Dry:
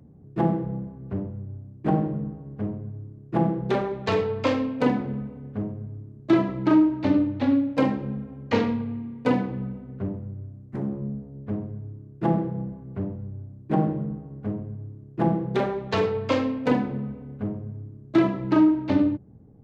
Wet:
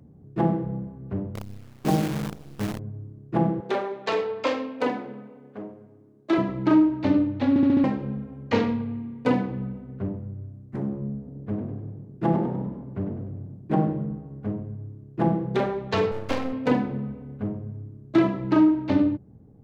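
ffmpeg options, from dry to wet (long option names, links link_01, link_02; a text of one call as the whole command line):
ffmpeg -i in.wav -filter_complex "[0:a]asettb=1/sr,asplit=3[link_01][link_02][link_03];[link_01]atrim=end=1.354[link_04];[link_02]atrim=start=1.35:end=2.79,asetpts=PTS-STARTPTS,afade=type=in:duration=0.004:curve=qsin,afade=type=out:start_time=1.436:duration=0.004:curve=qsin,acrusher=bits=6:dc=4:mix=0:aa=0.000001[link_05];[link_03]atrim=start=2.786[link_06];[link_04][link_05]acrossfade=duration=0.004:curve1=hsin:curve2=qsin[link_07];[link_07][link_06]acrossfade=duration=0.004:curve1=qsin:curve2=hsin,asettb=1/sr,asplit=3[link_08][link_09][link_10];[link_08]atrim=end=3.604[link_11];[link_09]atrim=start=3.6:end=6.38,asetpts=PTS-STARTPTS,afade=type=in:duration=0.004:curve=qsin,afade=type=out:start_time=2.776:duration=0.004:curve=qsin,highpass=360[link_12];[link_10]atrim=start=6.376[link_13];[link_11][link_12]acrossfade=duration=0.004:curve1=hsin:curve2=qsin[link_14];[link_14][link_13]acrossfade=duration=0.004:curve1=qsin:curve2=hsin,asettb=1/sr,asplit=3[link_15][link_16][link_17];[link_15]atrim=end=11.164[link_18];[link_16]atrim=start=11.16:end=13.69,asetpts=PTS-STARTPTS,afade=type=in:duration=0.004:curve=qsin,afade=type=out:start_time=2.526:duration=0.004:curve=qsin,asplit=6[link_19][link_20][link_21][link_22][link_23][link_24];[link_20]adelay=99,afreqshift=42,volume=-9dB[link_25];[link_21]adelay=198,afreqshift=84,volume=-15.6dB[link_26];[link_22]adelay=297,afreqshift=126,volume=-22.1dB[link_27];[link_23]adelay=396,afreqshift=168,volume=-28.7dB[link_28];[link_24]adelay=495,afreqshift=210,volume=-35.2dB[link_29];[link_19][link_25][link_26][link_27][link_28][link_29]amix=inputs=6:normalize=0,atrim=end_sample=111573[link_30];[link_17]atrim=start=13.686[link_31];[link_18][link_30]acrossfade=duration=0.004:curve1=hsin:curve2=qsin[link_32];[link_32][link_31]acrossfade=duration=0.004:curve1=qsin:curve2=hsin,asettb=1/sr,asplit=3[link_33][link_34][link_35];[link_33]atrim=end=16.114[link_36];[link_34]atrim=start=16.11:end=16.53,asetpts=PTS-STARTPTS,afade=type=in:duration=0.004:curve=qsin,afade=type=out:start_time=0.416:duration=0.004:curve=qsin,aeval=exprs='max(val(0),0)':channel_layout=same[link_37];[link_35]atrim=start=16.526[link_38];[link_36][link_37]acrossfade=duration=0.004:curve1=hsin:curve2=qsin[link_39];[link_39][link_38]acrossfade=duration=0.004:curve1=qsin:curve2=hsin,asplit=6[link_40][link_41][link_42][link_43][link_44][link_45];[link_40]atrim=end=7.562[link_46];[link_41]atrim=start=7.488:end=7.562[link_47];[link_42]atrim=start=7.488:end=7.562[link_48];[link_43]atrim=start=7.488:end=7.562[link_49];[link_44]atrim=start=7.488:end=7.562[link_50];[link_45]atrim=start=7.838[link_51];[link_46][link_47]acrossfade=duration=0.004:curve1=hsin:curve2=hsin[link_52];[link_52][link_48]acrossfade=duration=0.004:curve1=hsin:curve2=hsin[link_53];[link_53][link_49]acrossfade=duration=0.004:curve1=hsin:curve2=hsin[link_54];[link_54][link_50]acrossfade=duration=0.004:curve1=hsin:curve2=hsin[link_55];[link_55][link_51]acrossfade=duration=0.004:curve1=hsin:curve2=hsin" out.wav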